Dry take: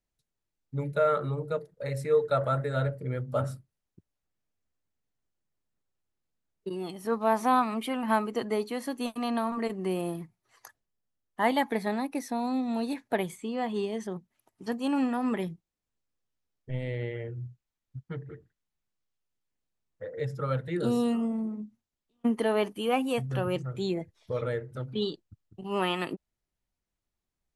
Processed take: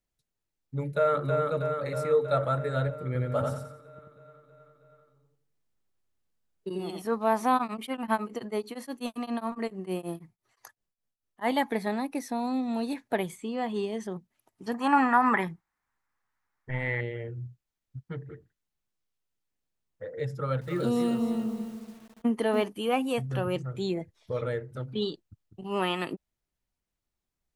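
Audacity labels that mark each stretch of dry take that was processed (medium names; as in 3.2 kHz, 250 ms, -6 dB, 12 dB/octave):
0.820000	1.420000	echo throw 320 ms, feedback 70%, level -4 dB
3.060000	7.020000	feedback delay 88 ms, feedback 35%, level -3 dB
7.560000	11.470000	tremolo of two beating tones nulls at 11 Hz -> 4.2 Hz
14.740000	17.010000	high-order bell 1.3 kHz +15.5 dB
20.330000	22.670000	bit-crushed delay 285 ms, feedback 35%, word length 8-bit, level -8 dB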